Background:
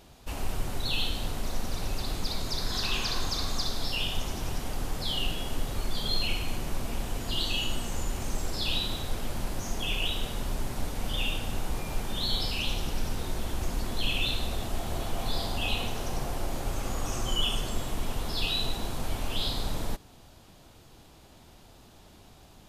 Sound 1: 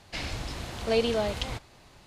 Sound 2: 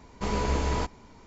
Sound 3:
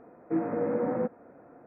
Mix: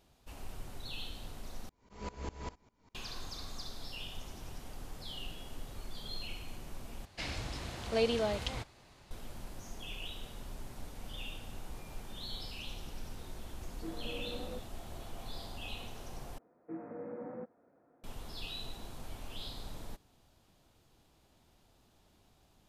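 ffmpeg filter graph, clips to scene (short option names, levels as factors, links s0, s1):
-filter_complex "[3:a]asplit=2[s0][s1];[0:a]volume=0.211[s2];[2:a]aeval=exprs='val(0)*pow(10,-22*if(lt(mod(-5*n/s,1),2*abs(-5)/1000),1-mod(-5*n/s,1)/(2*abs(-5)/1000),(mod(-5*n/s,1)-2*abs(-5)/1000)/(1-2*abs(-5)/1000))/20)':c=same[s3];[s2]asplit=4[s4][s5][s6][s7];[s4]atrim=end=1.694[s8];[s3]atrim=end=1.26,asetpts=PTS-STARTPTS,volume=0.335[s9];[s5]atrim=start=2.946:end=7.054[s10];[1:a]atrim=end=2.06,asetpts=PTS-STARTPTS,volume=0.562[s11];[s6]atrim=start=9.106:end=16.384[s12];[s1]atrim=end=1.66,asetpts=PTS-STARTPTS,volume=0.178[s13];[s7]atrim=start=18.036[s14];[s0]atrim=end=1.66,asetpts=PTS-STARTPTS,volume=0.168,afade=t=in:d=0.004:c=hsin,afade=t=out:st=1.656:d=0.004:c=hsin,adelay=13520[s15];[s8][s9]acrossfade=d=0.004:c1=hsin:c2=hsin[s16];[s16][s10]acrossfade=d=0.004:c1=hsin:c2=hsin[s17];[s17][s11]acrossfade=d=0.004:c1=hsin:c2=hsin[s18];[s18][s12]acrossfade=d=0.004:c1=hsin:c2=hsin[s19];[s19][s13]acrossfade=d=0.004:c1=hsin:c2=hsin[s20];[s20][s14]acrossfade=d=0.004:c1=hsin:c2=hsin[s21];[s21][s15]amix=inputs=2:normalize=0"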